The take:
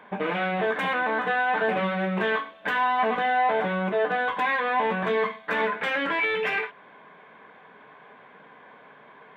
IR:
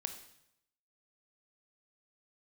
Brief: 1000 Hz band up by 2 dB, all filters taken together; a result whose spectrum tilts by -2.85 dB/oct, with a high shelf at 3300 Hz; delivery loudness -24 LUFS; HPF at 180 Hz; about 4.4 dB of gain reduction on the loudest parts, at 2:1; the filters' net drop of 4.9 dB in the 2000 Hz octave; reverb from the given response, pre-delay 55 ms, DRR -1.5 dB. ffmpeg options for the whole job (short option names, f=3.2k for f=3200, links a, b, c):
-filter_complex "[0:a]highpass=180,equalizer=f=1k:t=o:g=4.5,equalizer=f=2k:t=o:g=-7,highshelf=f=3.3k:g=-6,acompressor=threshold=-26dB:ratio=2,asplit=2[a][b];[1:a]atrim=start_sample=2205,adelay=55[c];[b][c]afir=irnorm=-1:irlink=0,volume=2.5dB[d];[a][d]amix=inputs=2:normalize=0,volume=0.5dB"